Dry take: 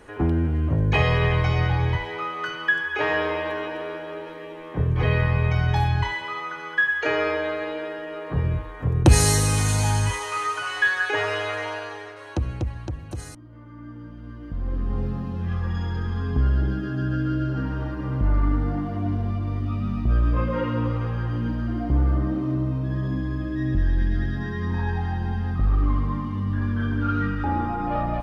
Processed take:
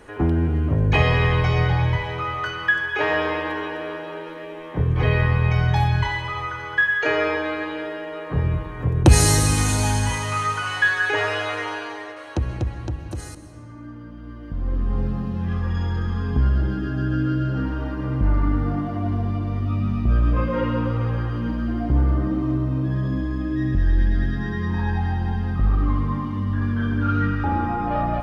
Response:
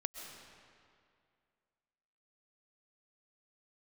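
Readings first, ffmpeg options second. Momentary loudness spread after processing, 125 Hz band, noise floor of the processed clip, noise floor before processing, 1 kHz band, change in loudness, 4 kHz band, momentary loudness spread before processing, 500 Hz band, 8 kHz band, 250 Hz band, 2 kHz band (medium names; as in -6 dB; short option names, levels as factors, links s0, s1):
12 LU, +2.0 dB, -37 dBFS, -39 dBFS, +2.5 dB, +2.0 dB, +2.0 dB, 11 LU, +1.5 dB, +2.0 dB, +2.5 dB, +2.0 dB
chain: -filter_complex "[0:a]asplit=2[s0][s1];[1:a]atrim=start_sample=2205[s2];[s1][s2]afir=irnorm=-1:irlink=0,volume=1.06[s3];[s0][s3]amix=inputs=2:normalize=0,volume=0.668"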